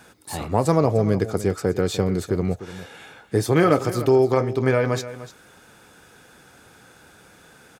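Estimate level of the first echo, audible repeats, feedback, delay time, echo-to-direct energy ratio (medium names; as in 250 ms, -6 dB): -14.5 dB, 1, no regular repeats, 299 ms, -14.5 dB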